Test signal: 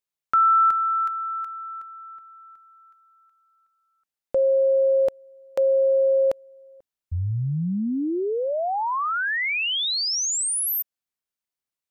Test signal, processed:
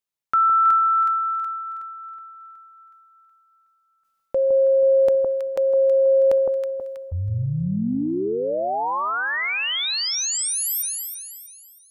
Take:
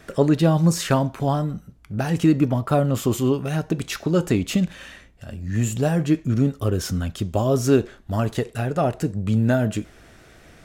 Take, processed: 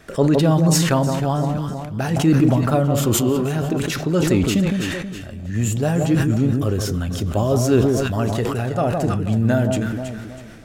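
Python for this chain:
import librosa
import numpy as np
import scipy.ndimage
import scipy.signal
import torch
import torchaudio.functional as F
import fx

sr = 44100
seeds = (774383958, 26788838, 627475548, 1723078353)

y = fx.echo_alternate(x, sr, ms=161, hz=1100.0, feedback_pct=61, wet_db=-6)
y = fx.sustainer(y, sr, db_per_s=27.0)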